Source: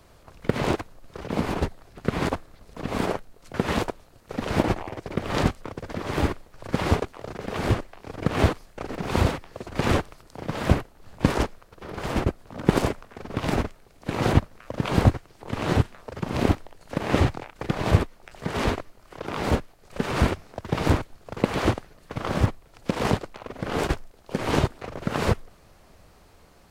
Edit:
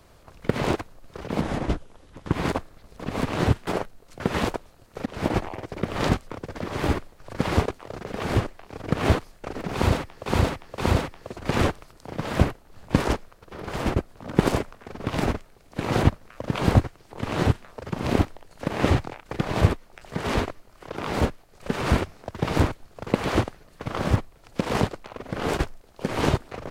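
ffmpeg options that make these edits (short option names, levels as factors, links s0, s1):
-filter_complex "[0:a]asplit=8[s0][s1][s2][s3][s4][s5][s6][s7];[s0]atrim=end=1.414[s8];[s1]atrim=start=1.41:end=2.1,asetpts=PTS-STARTPTS,asetrate=33075,aresample=44100[s9];[s2]atrim=start=2.096:end=3.012[s10];[s3]atrim=start=15.528:end=15.962[s11];[s4]atrim=start=3.008:end=4.4,asetpts=PTS-STARTPTS,afade=t=out:st=1.388:d=0.004:c=hsin:silence=0.133352[s12];[s5]atrim=start=4.4:end=9.602,asetpts=PTS-STARTPTS,afade=t=in:d=0.31:silence=0.133352[s13];[s6]atrim=start=9.078:end=9.602[s14];[s7]atrim=start=9.078[s15];[s8][s9]acrossfade=d=0.004:c1=hsin:c2=hsin[s16];[s16][s10]acrossfade=d=0.004:c1=hsin:c2=hsin[s17];[s17][s11]acrossfade=d=0.004:c1=hsin:c2=hsin[s18];[s12][s13]concat=n=2:v=0:a=1[s19];[s18][s19]acrossfade=d=0.004:c1=hsin:c2=hsin[s20];[s20][s14]acrossfade=d=0.004:c1=hsin:c2=hsin[s21];[s21][s15]acrossfade=d=0.004:c1=hsin:c2=hsin"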